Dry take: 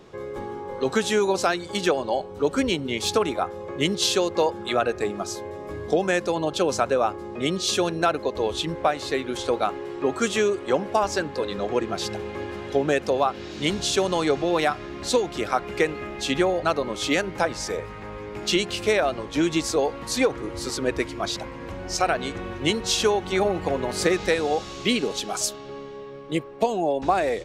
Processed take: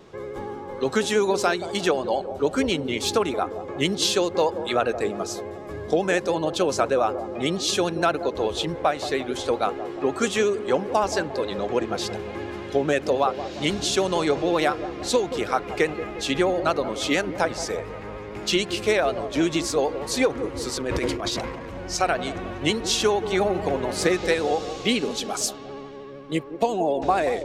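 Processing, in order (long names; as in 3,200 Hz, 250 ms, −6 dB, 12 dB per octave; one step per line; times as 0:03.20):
delay with a band-pass on its return 177 ms, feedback 51%, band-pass 430 Hz, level −10 dB
pitch vibrato 13 Hz 43 cents
0:20.76–0:21.76: transient designer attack −11 dB, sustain +10 dB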